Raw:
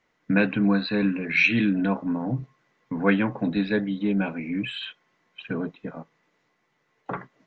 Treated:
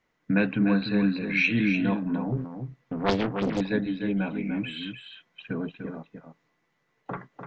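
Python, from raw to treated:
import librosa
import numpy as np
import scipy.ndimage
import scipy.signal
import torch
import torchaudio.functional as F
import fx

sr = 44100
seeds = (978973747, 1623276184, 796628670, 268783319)

y = fx.low_shelf(x, sr, hz=180.0, db=5.5)
y = y + 10.0 ** (-7.5 / 20.0) * np.pad(y, (int(297 * sr / 1000.0), 0))[:len(y)]
y = fx.doppler_dist(y, sr, depth_ms=0.98, at=(2.32, 3.61))
y = y * 10.0 ** (-4.0 / 20.0)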